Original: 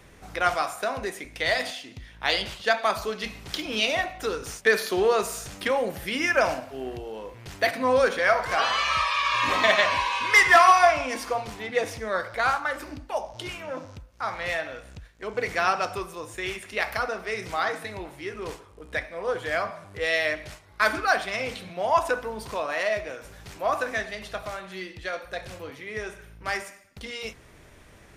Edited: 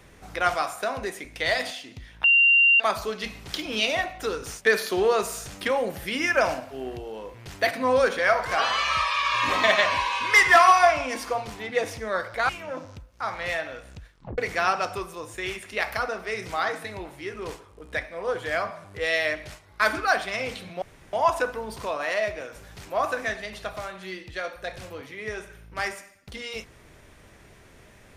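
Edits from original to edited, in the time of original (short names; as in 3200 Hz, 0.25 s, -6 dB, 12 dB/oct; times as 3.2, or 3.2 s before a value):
2.24–2.8 bleep 2770 Hz -14 dBFS
12.49–13.49 cut
15.11 tape stop 0.27 s
21.82 insert room tone 0.31 s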